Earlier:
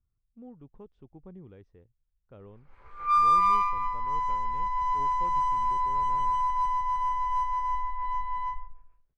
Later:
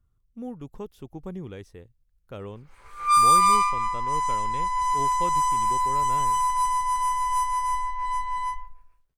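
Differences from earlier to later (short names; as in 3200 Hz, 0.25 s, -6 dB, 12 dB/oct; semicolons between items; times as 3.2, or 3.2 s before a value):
speech +10.0 dB; master: remove tape spacing loss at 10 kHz 34 dB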